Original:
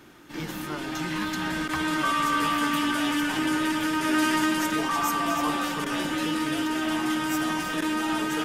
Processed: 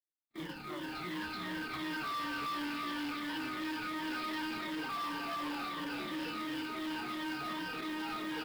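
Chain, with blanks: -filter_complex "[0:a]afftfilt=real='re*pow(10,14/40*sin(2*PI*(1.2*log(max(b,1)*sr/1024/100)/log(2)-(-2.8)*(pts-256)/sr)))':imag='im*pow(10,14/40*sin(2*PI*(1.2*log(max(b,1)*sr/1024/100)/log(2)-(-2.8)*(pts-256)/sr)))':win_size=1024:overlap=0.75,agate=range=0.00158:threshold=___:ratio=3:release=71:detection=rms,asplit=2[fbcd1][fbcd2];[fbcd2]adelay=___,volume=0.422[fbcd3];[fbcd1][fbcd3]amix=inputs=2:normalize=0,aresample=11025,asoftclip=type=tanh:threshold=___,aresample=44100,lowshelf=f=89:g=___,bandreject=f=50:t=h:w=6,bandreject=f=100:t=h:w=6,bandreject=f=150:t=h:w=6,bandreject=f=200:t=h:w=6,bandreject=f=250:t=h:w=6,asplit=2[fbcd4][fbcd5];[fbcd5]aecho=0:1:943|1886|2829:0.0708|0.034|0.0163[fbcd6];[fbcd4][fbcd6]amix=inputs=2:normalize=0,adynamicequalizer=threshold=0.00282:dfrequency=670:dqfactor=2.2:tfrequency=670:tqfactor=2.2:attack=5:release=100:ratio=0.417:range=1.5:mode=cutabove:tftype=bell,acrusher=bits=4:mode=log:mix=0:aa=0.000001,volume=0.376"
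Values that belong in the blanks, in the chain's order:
0.0316, 28, 0.0473, -6.5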